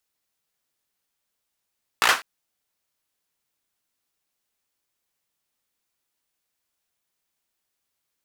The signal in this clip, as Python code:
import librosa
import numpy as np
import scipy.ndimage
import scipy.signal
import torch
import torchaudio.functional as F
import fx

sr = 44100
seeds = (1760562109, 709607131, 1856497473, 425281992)

y = fx.drum_clap(sr, seeds[0], length_s=0.2, bursts=5, spacing_ms=17, hz=1400.0, decay_s=0.27)